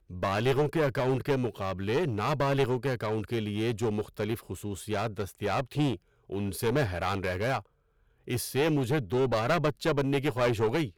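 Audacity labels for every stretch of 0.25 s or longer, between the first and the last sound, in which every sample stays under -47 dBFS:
5.970000	6.300000	silence
7.620000	8.270000	silence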